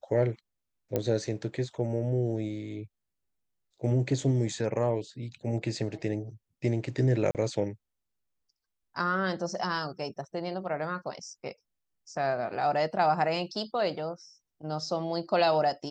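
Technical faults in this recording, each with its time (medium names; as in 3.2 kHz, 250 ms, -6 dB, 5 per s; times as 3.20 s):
0.96 s: pop -15 dBFS
7.31–7.35 s: dropout 38 ms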